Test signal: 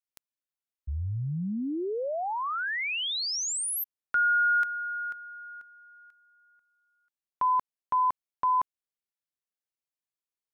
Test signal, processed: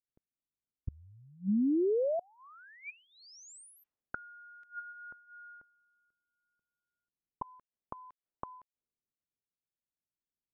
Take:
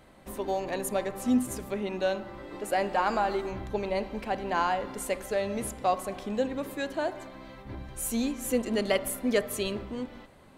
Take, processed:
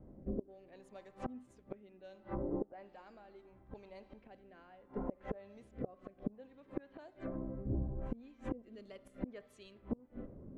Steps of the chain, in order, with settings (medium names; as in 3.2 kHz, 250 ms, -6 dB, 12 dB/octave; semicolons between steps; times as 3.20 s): rotary cabinet horn 0.7 Hz; level-controlled noise filter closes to 330 Hz, open at -26.5 dBFS; inverted gate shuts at -30 dBFS, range -30 dB; low-pass that closes with the level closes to 560 Hz, closed at -41 dBFS; trim +6.5 dB